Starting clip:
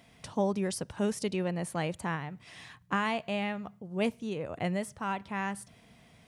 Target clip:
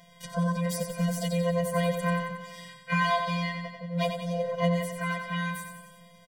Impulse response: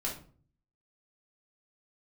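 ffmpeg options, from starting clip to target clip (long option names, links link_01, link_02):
-filter_complex "[0:a]asplit=2[link_01][link_02];[link_02]asetrate=66075,aresample=44100,atempo=0.66742,volume=-4dB[link_03];[link_01][link_03]amix=inputs=2:normalize=0,afftfilt=real='hypot(re,im)*cos(PI*b)':imag='0':win_size=1024:overlap=0.75,asplit=2[link_04][link_05];[link_05]aecho=0:1:91|182|273|364|455|546|637|728:0.447|0.268|0.161|0.0965|0.0579|0.0347|0.0208|0.0125[link_06];[link_04][link_06]amix=inputs=2:normalize=0,afftfilt=real='re*eq(mod(floor(b*sr/1024/230),2),0)':imag='im*eq(mod(floor(b*sr/1024/230),2),0)':win_size=1024:overlap=0.75,volume=7.5dB"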